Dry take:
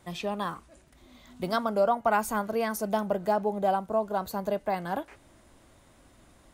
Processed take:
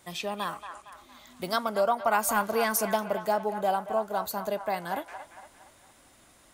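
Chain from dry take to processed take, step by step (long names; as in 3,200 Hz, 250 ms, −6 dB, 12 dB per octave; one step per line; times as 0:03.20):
spectral tilt +2 dB per octave
0:02.27–0:02.96: leveller curve on the samples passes 1
on a send: delay with a band-pass on its return 230 ms, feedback 45%, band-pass 1,400 Hz, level −8 dB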